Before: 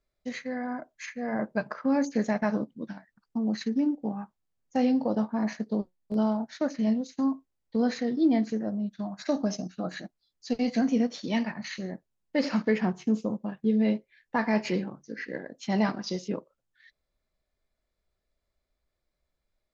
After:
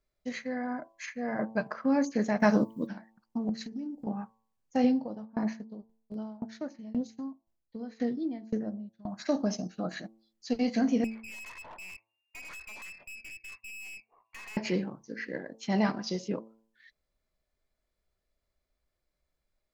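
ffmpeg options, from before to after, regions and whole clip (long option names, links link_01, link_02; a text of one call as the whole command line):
ffmpeg -i in.wav -filter_complex "[0:a]asettb=1/sr,asplit=3[link_01][link_02][link_03];[link_01]atrim=end=2.404[link_04];[link_02]atrim=start=2.4:end=2.87,asetpts=PTS-STARTPTS,afade=type=in:duration=0.004:curve=qsin,afade=type=out:start_time=0.466:duration=0.004:curve=qsin,aemphasis=mode=production:type=50fm,acontrast=51[link_05];[link_03]atrim=start=2.866[link_06];[link_04][link_05]acrossfade=duration=0.004:curve1=hsin:curve2=qsin[link_07];[link_07][link_06]acrossfade=duration=0.004:curve1=qsin:curve2=hsin,asettb=1/sr,asplit=3[link_08][link_09][link_10];[link_08]atrim=end=3.494[link_11];[link_09]atrim=start=3.49:end=4.07,asetpts=PTS-STARTPTS,afade=type=in:duration=0.004:curve=qsin,afade=type=out:start_time=0.576:duration=0.004:curve=qsin,bass=frequency=250:gain=11,treble=frequency=4000:gain=9,bandreject=frequency=6300:width=18,acompressor=threshold=-35dB:ratio=6:attack=3.2:release=140:knee=1:detection=peak[link_12];[link_10]atrim=start=4.066[link_13];[link_11][link_12]acrossfade=duration=0.004:curve1=hsin:curve2=qsin[link_14];[link_14][link_13]acrossfade=duration=0.004:curve1=qsin:curve2=hsin,asettb=1/sr,asplit=3[link_15][link_16][link_17];[link_15]atrim=end=4.844[link_18];[link_16]atrim=start=4.84:end=9.06,asetpts=PTS-STARTPTS,afade=type=in:duration=0.004:curve=qsin,afade=type=out:start_time=4.216:duration=0.004:curve=qsin,lowshelf=frequency=250:gain=6,aeval=exprs='val(0)*pow(10,-24*if(lt(mod(1.9*n/s,1),2*abs(1.9)/1000),1-mod(1.9*n/s,1)/(2*abs(1.9)/1000),(mod(1.9*n/s,1)-2*abs(1.9)/1000)/(1-2*abs(1.9)/1000))/20)':channel_layout=same[link_19];[link_17]atrim=start=9.056[link_20];[link_18][link_19]acrossfade=duration=0.004:curve1=hsin:curve2=qsin[link_21];[link_21][link_20]acrossfade=duration=0.004:curve1=qsin:curve2=hsin,asettb=1/sr,asplit=3[link_22][link_23][link_24];[link_22]atrim=end=11.044[link_25];[link_23]atrim=start=11.04:end=14.57,asetpts=PTS-STARTPTS,afade=type=in:duration=0.004:curve=qsin,afade=type=out:start_time=3.526:duration=0.004:curve=qsin,acompressor=threshold=-30dB:ratio=12:attack=3.2:release=140:knee=1:detection=peak,lowpass=frequency=2400:width_type=q:width=0.5098,lowpass=frequency=2400:width_type=q:width=0.6013,lowpass=frequency=2400:width_type=q:width=0.9,lowpass=frequency=2400:width_type=q:width=2.563,afreqshift=-2800,aeval=exprs='(tanh(126*val(0)+0.55)-tanh(0.55))/126':channel_layout=same[link_26];[link_24]atrim=start=14.566[link_27];[link_25][link_26]acrossfade=duration=0.004:curve1=hsin:curve2=qsin[link_28];[link_28][link_27]acrossfade=duration=0.004:curve1=qsin:curve2=hsin,bandreject=frequency=3700:width=23,bandreject=frequency=111.4:width_type=h:width=4,bandreject=frequency=222.8:width_type=h:width=4,bandreject=frequency=334.2:width_type=h:width=4,bandreject=frequency=445.6:width_type=h:width=4,bandreject=frequency=557:width_type=h:width=4,bandreject=frequency=668.4:width_type=h:width=4,bandreject=frequency=779.8:width_type=h:width=4,bandreject=frequency=891.2:width_type=h:width=4,bandreject=frequency=1002.6:width_type=h:width=4,bandreject=frequency=1114:width_type=h:width=4,volume=-1dB" out.wav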